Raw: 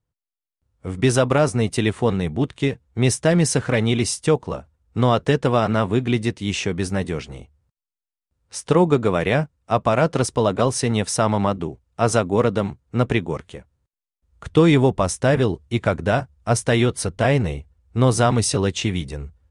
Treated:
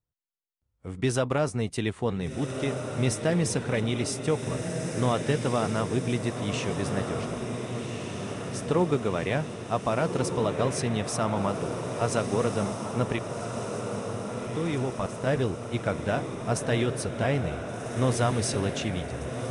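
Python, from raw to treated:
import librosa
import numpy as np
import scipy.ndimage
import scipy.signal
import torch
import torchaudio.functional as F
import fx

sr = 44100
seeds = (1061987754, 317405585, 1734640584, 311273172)

y = fx.level_steps(x, sr, step_db=20, at=(13.16, 15.27))
y = fx.echo_diffused(y, sr, ms=1523, feedback_pct=64, wet_db=-6)
y = F.gain(torch.from_numpy(y), -8.5).numpy()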